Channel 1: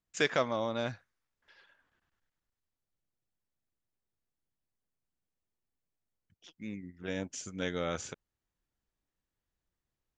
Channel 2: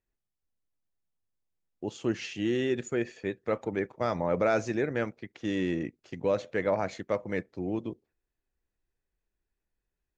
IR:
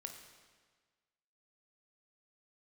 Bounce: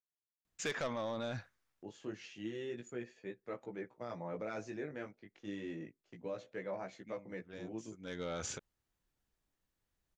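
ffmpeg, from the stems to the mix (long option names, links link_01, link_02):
-filter_complex "[0:a]asoftclip=type=tanh:threshold=-26dB,adelay=450,volume=2.5dB[link_01];[1:a]agate=range=-7dB:threshold=-52dB:ratio=16:detection=peak,highpass=110,flanger=delay=15.5:depth=4.7:speed=0.29,volume=-10.5dB,asplit=2[link_02][link_03];[link_03]apad=whole_len=468348[link_04];[link_01][link_04]sidechaincompress=threshold=-59dB:ratio=12:attack=31:release=413[link_05];[link_05][link_02]amix=inputs=2:normalize=0,alimiter=level_in=7dB:limit=-24dB:level=0:latency=1:release=40,volume=-7dB"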